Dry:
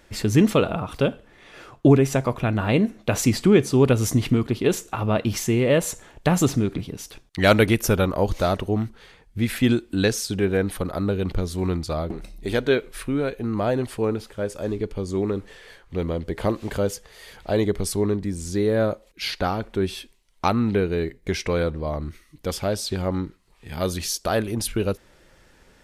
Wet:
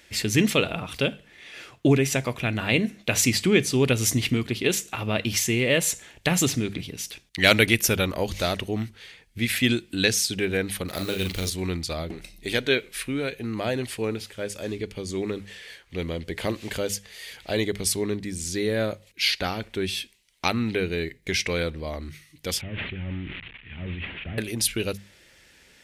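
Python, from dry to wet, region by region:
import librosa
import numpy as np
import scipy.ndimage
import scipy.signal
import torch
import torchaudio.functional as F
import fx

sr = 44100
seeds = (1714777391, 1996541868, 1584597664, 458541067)

y = fx.chain(x, sr, fx.law_mismatch(coded='A'),
    fx.high_shelf(hz=3400.0, db=10.5),
    fx.doubler(ms=42.0, db=-5.5), at=(10.88, 11.5))
y = fx.chain(y, sr, fx.delta_mod(bps=16000, step_db=-40.5),
    fx.peak_eq(hz=670.0, db=-10.0, octaves=2.5),
    fx.sustainer(db_per_s=47.0), at=(22.61, 24.38))
y = scipy.signal.sosfilt(scipy.signal.butter(2, 45.0, 'highpass', fs=sr, output='sos'), y)
y = fx.high_shelf_res(y, sr, hz=1600.0, db=8.5, q=1.5)
y = fx.hum_notches(y, sr, base_hz=50, count=4)
y = F.gain(torch.from_numpy(y), -4.0).numpy()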